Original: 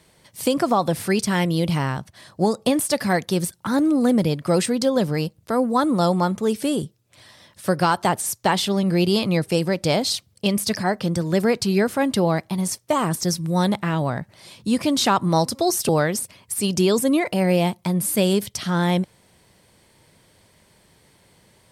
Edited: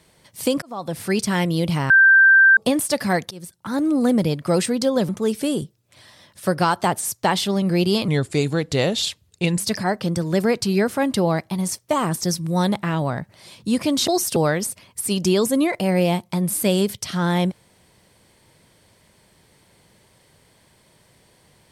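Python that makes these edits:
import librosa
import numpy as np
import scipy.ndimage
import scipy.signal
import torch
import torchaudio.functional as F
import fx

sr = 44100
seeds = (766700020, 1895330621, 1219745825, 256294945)

y = fx.edit(x, sr, fx.fade_in_span(start_s=0.62, length_s=0.55),
    fx.bleep(start_s=1.9, length_s=0.67, hz=1570.0, db=-8.5),
    fx.fade_in_from(start_s=3.31, length_s=0.66, floor_db=-23.0),
    fx.cut(start_s=5.09, length_s=1.21),
    fx.speed_span(start_s=9.29, length_s=1.31, speed=0.86),
    fx.cut(start_s=15.07, length_s=0.53), tone=tone)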